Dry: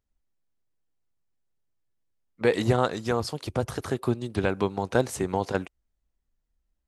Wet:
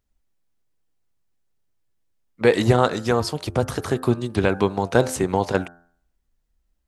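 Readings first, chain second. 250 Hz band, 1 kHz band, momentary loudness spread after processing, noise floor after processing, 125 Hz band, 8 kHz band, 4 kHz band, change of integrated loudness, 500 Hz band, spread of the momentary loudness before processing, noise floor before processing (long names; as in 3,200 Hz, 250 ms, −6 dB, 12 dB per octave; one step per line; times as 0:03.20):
+6.0 dB, +5.5 dB, 7 LU, −72 dBFS, +6.0 dB, +6.0 dB, +6.0 dB, +6.0 dB, +6.0 dB, 7 LU, −79 dBFS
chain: hum removal 86.01 Hz, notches 21
level +6 dB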